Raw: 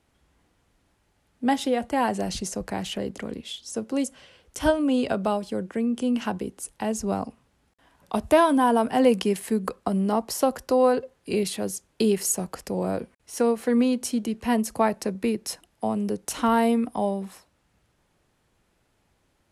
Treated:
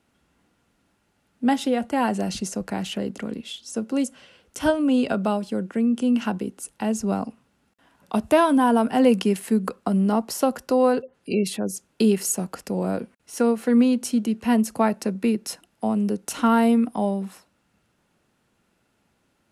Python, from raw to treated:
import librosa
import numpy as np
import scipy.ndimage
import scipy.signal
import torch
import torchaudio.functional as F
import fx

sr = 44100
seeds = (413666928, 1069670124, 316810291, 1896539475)

y = fx.spec_gate(x, sr, threshold_db=-30, keep='strong', at=(11.02, 11.76))
y = fx.low_shelf(y, sr, hz=70.0, db=-11.5)
y = fx.small_body(y, sr, hz=(210.0, 1400.0, 2700.0), ring_ms=25, db=6)